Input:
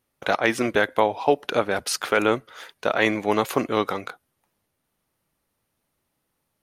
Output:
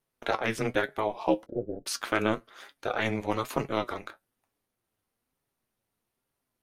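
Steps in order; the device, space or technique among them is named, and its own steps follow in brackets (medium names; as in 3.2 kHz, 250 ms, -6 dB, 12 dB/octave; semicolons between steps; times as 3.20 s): alien voice (ring modulator 110 Hz; flange 1.1 Hz, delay 7 ms, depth 2.6 ms, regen +63%); 1.46–1.86 s: inverse Chebyshev low-pass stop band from 1 kHz, stop band 40 dB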